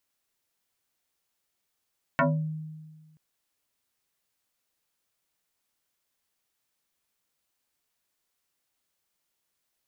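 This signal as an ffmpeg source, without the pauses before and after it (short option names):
-f lavfi -i "aevalsrc='0.126*pow(10,-3*t/1.52)*sin(2*PI*156*t+5.1*pow(10,-3*t/0.36)*sin(2*PI*2.64*156*t))':d=0.98:s=44100"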